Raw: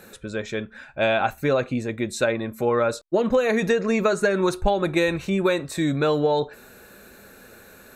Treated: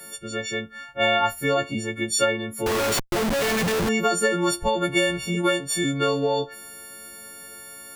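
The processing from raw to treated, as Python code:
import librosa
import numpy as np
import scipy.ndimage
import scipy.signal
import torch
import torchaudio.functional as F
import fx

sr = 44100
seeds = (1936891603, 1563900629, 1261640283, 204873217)

y = fx.freq_snap(x, sr, grid_st=4)
y = fx.schmitt(y, sr, flips_db=-28.5, at=(2.66, 3.89))
y = y * librosa.db_to_amplitude(-2.0)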